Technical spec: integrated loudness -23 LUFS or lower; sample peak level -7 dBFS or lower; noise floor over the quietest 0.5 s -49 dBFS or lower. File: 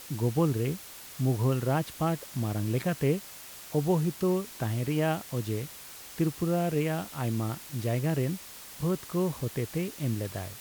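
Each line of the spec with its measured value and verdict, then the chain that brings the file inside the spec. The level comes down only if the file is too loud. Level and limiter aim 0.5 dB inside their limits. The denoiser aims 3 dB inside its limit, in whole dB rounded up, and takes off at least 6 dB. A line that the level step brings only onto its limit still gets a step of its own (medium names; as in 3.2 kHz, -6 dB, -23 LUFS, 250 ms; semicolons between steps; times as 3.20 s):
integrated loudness -30.0 LUFS: pass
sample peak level -14.5 dBFS: pass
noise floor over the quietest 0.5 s -46 dBFS: fail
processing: noise reduction 6 dB, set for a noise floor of -46 dBFS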